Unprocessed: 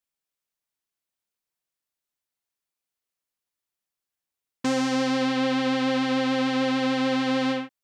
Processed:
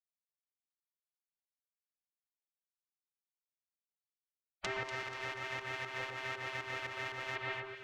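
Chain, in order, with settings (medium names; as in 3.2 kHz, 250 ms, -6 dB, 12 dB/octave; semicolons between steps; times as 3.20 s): low-pass that closes with the level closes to 1.3 kHz, closed at -24 dBFS; spectral gate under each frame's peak -25 dB weak; peaking EQ 4.5 kHz -7 dB 2 oct; 4.83–7.36 s: power-law waveshaper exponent 1.4; volume shaper 118 bpm, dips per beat 2, -12 dB, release 185 ms; echo whose repeats swap between lows and highs 121 ms, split 1.6 kHz, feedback 65%, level -5.5 dB; trim +10 dB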